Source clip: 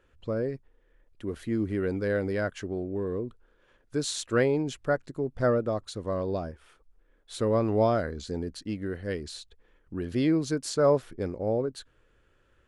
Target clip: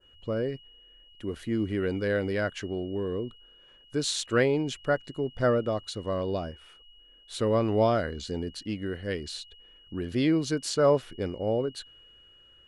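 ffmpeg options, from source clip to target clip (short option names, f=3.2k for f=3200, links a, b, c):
-af "aeval=exprs='val(0)+0.00158*sin(2*PI*2900*n/s)':c=same,adynamicequalizer=threshold=0.00447:dfrequency=3100:dqfactor=0.85:tfrequency=3100:tqfactor=0.85:attack=5:release=100:ratio=0.375:range=2.5:mode=boostabove:tftype=bell"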